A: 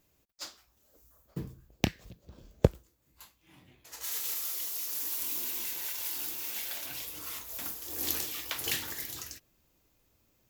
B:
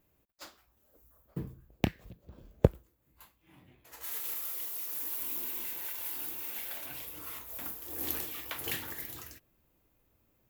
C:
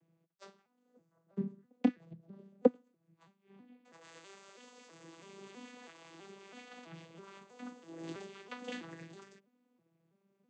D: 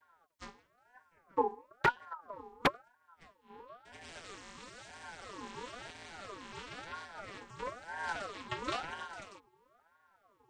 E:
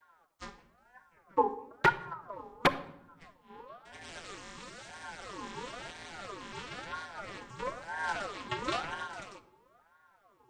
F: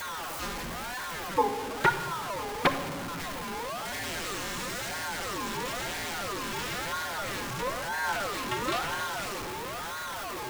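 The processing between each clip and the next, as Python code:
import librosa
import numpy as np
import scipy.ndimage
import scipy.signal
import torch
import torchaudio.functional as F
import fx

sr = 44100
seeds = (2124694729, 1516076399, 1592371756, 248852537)

y1 = fx.peak_eq(x, sr, hz=5700.0, db=-11.0, octaves=1.6)
y2 = fx.vocoder_arp(y1, sr, chord='minor triad', root=52, every_ms=326)
y3 = 10.0 ** (-25.0 / 20.0) * (np.abs((y2 / 10.0 ** (-25.0 / 20.0) + 3.0) % 4.0 - 2.0) - 1.0)
y3 = fx.ring_lfo(y3, sr, carrier_hz=940.0, swing_pct=35, hz=1.0)
y3 = y3 * 10.0 ** (9.0 / 20.0)
y4 = fx.room_shoebox(y3, sr, seeds[0], volume_m3=2700.0, walls='furnished', distance_m=0.89)
y4 = y4 * 10.0 ** (3.0 / 20.0)
y5 = y4 + 0.5 * 10.0 ** (-30.5 / 20.0) * np.sign(y4)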